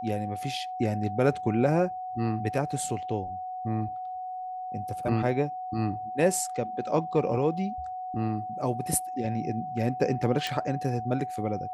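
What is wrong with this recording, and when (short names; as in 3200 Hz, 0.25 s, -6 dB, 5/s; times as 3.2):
tone 740 Hz -33 dBFS
10.47 pop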